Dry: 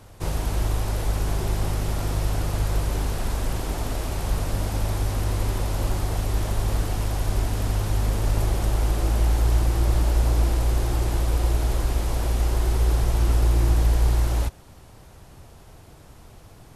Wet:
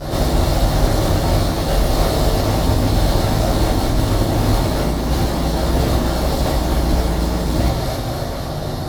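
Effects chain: graphic EQ 125/250/500/1000/2000/4000/8000 Hz +9/-10/+7/+9/+9/+7/-10 dB; split-band echo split 510 Hz, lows 0.216 s, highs 0.528 s, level -15 dB; dynamic EQ 2800 Hz, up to +5 dB, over -45 dBFS, Q 2; in parallel at +1 dB: compressor, threshold -32 dBFS, peak gain reduction 18.5 dB; on the sum: FFT band-reject 780–3600 Hz; time stretch by phase-locked vocoder 0.53×; fuzz box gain 36 dB, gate -39 dBFS; hum 50 Hz, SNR 11 dB; reverb RT60 0.60 s, pre-delay 9 ms, DRR -10.5 dB; gain -11.5 dB

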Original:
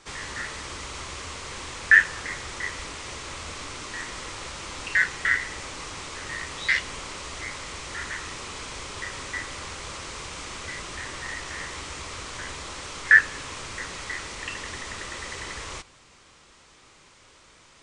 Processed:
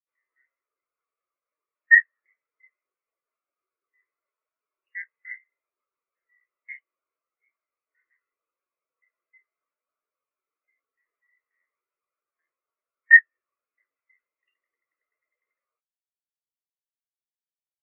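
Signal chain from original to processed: mistuned SSB +93 Hz 170–2800 Hz; spectral expander 2.5:1

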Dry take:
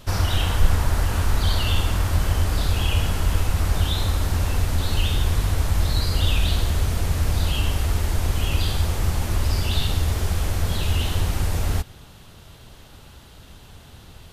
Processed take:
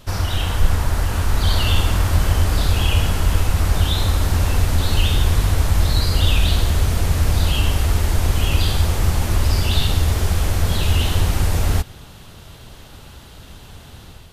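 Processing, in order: AGC gain up to 5 dB

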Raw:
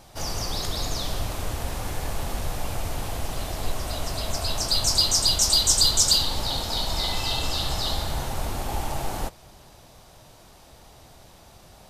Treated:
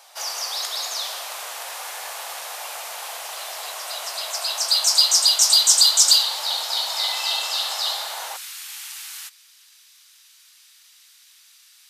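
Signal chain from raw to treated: Bessel high-pass 960 Hz, order 6, from 8.36 s 2500 Hz; gain +5 dB

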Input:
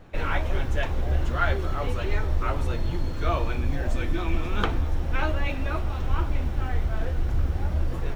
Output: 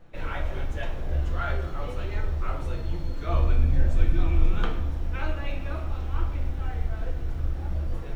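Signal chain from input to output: 3.3–4.58 low shelf 190 Hz +9.5 dB; shoebox room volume 170 m³, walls mixed, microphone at 0.73 m; gain -8 dB

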